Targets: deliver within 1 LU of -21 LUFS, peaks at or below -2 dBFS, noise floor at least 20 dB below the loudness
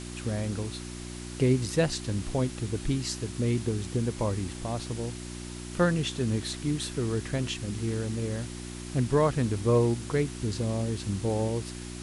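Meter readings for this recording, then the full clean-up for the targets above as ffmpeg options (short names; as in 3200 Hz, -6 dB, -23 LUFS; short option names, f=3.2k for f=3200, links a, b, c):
hum 60 Hz; harmonics up to 360 Hz; hum level -37 dBFS; noise floor -40 dBFS; noise floor target -50 dBFS; loudness -30.0 LUFS; peak -12.5 dBFS; loudness target -21.0 LUFS
-> -af "bandreject=f=60:t=h:w=4,bandreject=f=120:t=h:w=4,bandreject=f=180:t=h:w=4,bandreject=f=240:t=h:w=4,bandreject=f=300:t=h:w=4,bandreject=f=360:t=h:w=4"
-af "afftdn=nr=10:nf=-40"
-af "volume=9dB"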